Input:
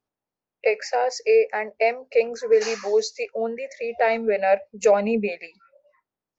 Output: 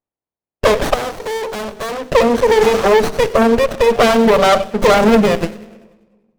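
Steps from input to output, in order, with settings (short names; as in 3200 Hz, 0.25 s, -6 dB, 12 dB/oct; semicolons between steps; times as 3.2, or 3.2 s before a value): bin magnitudes rounded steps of 30 dB; high shelf 2200 Hz -9 dB; sample leveller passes 5; compressor 3:1, threshold -16 dBFS, peak gain reduction 5 dB; notches 50/100/150/200/250/300/350/400/450 Hz; 0.94–2.04 tube stage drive 27 dB, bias 0.3; thin delay 97 ms, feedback 47%, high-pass 3900 Hz, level -10 dB; on a send at -16.5 dB: reverb RT60 1.3 s, pre-delay 3 ms; on the sum: running maximum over 17 samples; gain +7 dB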